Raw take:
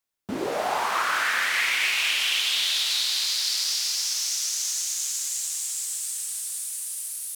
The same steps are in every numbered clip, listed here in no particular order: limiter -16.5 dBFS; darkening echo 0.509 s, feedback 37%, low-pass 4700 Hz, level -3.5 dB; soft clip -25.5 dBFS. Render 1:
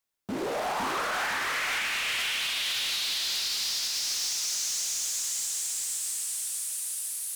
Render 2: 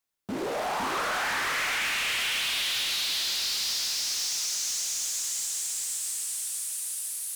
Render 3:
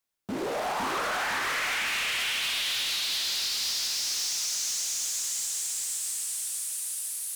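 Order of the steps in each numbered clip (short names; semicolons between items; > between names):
darkening echo > limiter > soft clip; darkening echo > soft clip > limiter; limiter > darkening echo > soft clip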